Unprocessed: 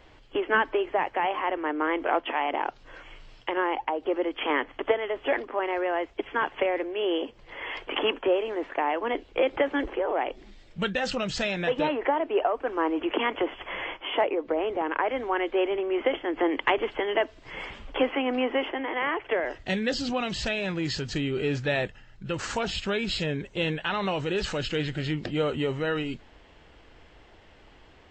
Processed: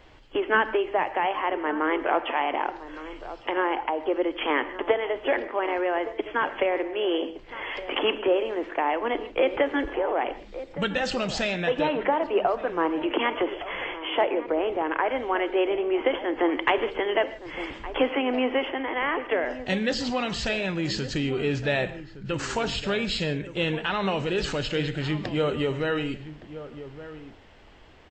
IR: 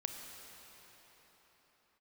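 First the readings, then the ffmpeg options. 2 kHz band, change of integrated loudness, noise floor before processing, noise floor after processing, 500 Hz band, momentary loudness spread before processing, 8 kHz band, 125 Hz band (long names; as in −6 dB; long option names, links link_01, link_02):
+1.5 dB, +1.5 dB, −54 dBFS, −47 dBFS, +1.5 dB, 7 LU, +1.5 dB, +1.5 dB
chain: -filter_complex "[0:a]asplit=2[link_01][link_02];[link_02]adelay=1166,volume=-13dB,highshelf=frequency=4000:gain=-26.2[link_03];[link_01][link_03]amix=inputs=2:normalize=0,asplit=2[link_04][link_05];[1:a]atrim=start_sample=2205,afade=type=out:start_time=0.21:duration=0.01,atrim=end_sample=9702[link_06];[link_05][link_06]afir=irnorm=-1:irlink=0,volume=3dB[link_07];[link_04][link_07]amix=inputs=2:normalize=0,volume=-5.5dB"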